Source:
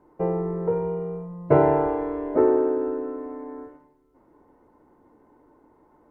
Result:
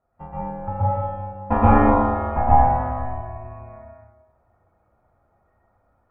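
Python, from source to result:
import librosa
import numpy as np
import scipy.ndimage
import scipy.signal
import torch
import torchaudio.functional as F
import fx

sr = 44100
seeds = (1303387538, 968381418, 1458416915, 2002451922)

y = fx.noise_reduce_blind(x, sr, reduce_db=12)
y = y * np.sin(2.0 * np.pi * 370.0 * np.arange(len(y)) / sr)
y = fx.rev_plate(y, sr, seeds[0], rt60_s=1.2, hf_ratio=0.75, predelay_ms=110, drr_db=-8.5)
y = y * 10.0 ** (-1.0 / 20.0)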